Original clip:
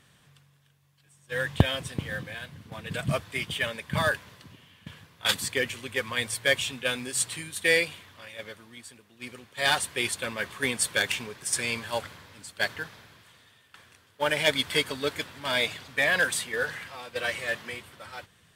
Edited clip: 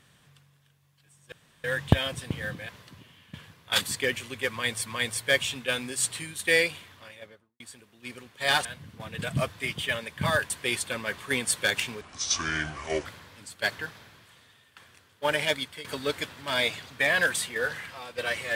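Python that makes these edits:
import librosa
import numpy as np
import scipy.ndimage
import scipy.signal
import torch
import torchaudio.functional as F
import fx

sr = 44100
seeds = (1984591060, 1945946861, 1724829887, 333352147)

y = fx.studio_fade_out(x, sr, start_s=8.12, length_s=0.65)
y = fx.edit(y, sr, fx.insert_room_tone(at_s=1.32, length_s=0.32),
    fx.move(start_s=2.37, length_s=1.85, to_s=9.82),
    fx.repeat(start_s=6.03, length_s=0.36, count=2),
    fx.speed_span(start_s=11.33, length_s=0.7, speed=0.67),
    fx.fade_out_to(start_s=14.31, length_s=0.51, floor_db=-22.0), tone=tone)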